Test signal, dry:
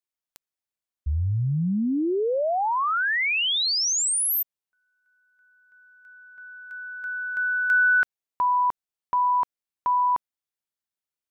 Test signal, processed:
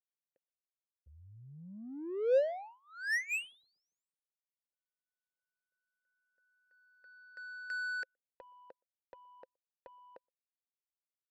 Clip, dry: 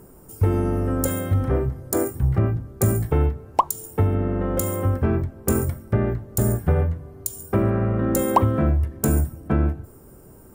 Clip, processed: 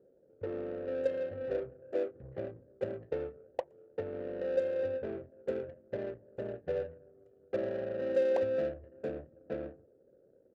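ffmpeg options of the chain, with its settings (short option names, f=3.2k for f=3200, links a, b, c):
-filter_complex "[0:a]asplit=3[a][b][c];[a]bandpass=f=530:t=q:w=8,volume=0dB[d];[b]bandpass=f=1.84k:t=q:w=8,volume=-6dB[e];[c]bandpass=f=2.48k:t=q:w=8,volume=-9dB[f];[d][e][f]amix=inputs=3:normalize=0,asplit=2[g][h];[h]adelay=120,highpass=300,lowpass=3.4k,asoftclip=type=hard:threshold=-26dB,volume=-30dB[i];[g][i]amix=inputs=2:normalize=0,adynamicsmooth=sensitivity=6.5:basefreq=550"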